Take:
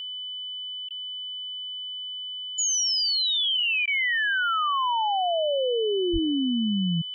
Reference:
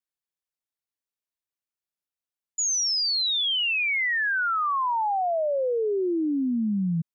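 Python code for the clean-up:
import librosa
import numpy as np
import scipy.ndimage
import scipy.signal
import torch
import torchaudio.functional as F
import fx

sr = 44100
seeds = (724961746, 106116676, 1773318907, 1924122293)

y = fx.notch(x, sr, hz=3000.0, q=30.0)
y = fx.fix_deplosive(y, sr, at_s=(6.12,))
y = fx.fix_interpolate(y, sr, at_s=(0.89, 3.86), length_ms=14.0)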